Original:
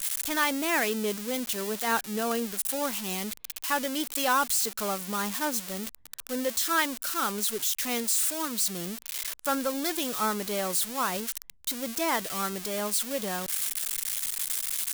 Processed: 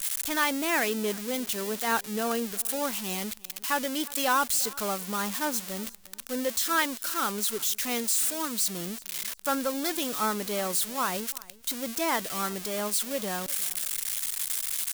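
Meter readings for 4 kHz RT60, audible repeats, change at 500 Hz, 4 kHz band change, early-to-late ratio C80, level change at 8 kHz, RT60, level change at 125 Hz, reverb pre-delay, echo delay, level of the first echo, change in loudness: no reverb, 1, 0.0 dB, 0.0 dB, no reverb, 0.0 dB, no reverb, 0.0 dB, no reverb, 356 ms, -22.0 dB, 0.0 dB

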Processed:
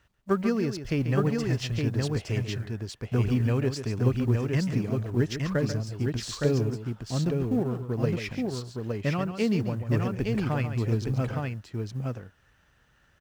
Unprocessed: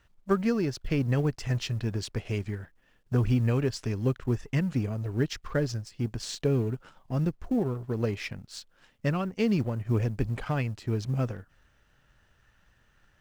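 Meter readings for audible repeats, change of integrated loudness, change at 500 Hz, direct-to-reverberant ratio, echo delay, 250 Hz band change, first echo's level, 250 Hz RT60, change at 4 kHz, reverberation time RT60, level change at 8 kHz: 2, +1.5 dB, +2.0 dB, no reverb, 139 ms, +2.0 dB, -9.5 dB, no reverb, +2.0 dB, no reverb, +2.0 dB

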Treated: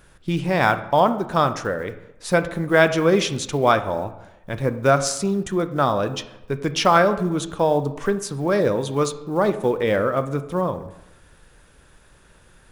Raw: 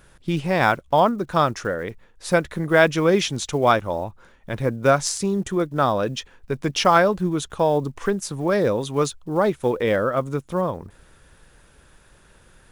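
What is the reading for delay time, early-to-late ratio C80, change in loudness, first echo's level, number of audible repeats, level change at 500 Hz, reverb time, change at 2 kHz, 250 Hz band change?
no echo, 15.0 dB, +0.5 dB, no echo, no echo, +0.5 dB, 0.90 s, +0.5 dB, +0.5 dB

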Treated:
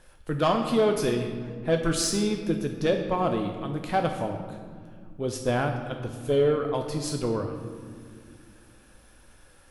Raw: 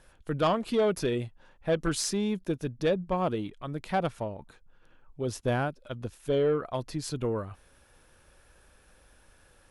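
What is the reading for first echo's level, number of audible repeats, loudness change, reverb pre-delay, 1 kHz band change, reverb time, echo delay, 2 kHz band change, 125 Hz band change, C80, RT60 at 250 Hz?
no echo, no echo, +3.5 dB, 3 ms, +4.0 dB, 2.1 s, no echo, +3.5 dB, +3.5 dB, 7.5 dB, 3.4 s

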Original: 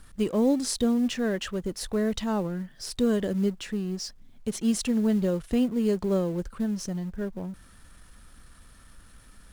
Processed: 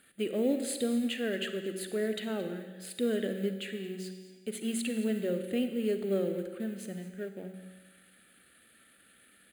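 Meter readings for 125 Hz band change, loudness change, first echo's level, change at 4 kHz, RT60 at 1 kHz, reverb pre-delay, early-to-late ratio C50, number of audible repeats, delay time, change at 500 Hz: -9.5 dB, -6.0 dB, -17.0 dB, -4.0 dB, 1.4 s, 37 ms, 8.0 dB, 1, 223 ms, -3.5 dB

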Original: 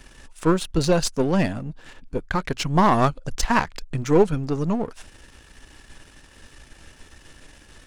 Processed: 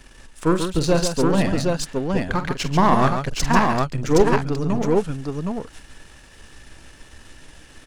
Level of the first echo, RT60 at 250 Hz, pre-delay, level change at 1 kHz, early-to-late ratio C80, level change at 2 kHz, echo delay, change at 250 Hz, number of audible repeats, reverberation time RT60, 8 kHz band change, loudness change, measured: -11.5 dB, no reverb, no reverb, +2.5 dB, no reverb, +2.5 dB, 46 ms, +2.5 dB, 3, no reverb, +2.5 dB, +1.5 dB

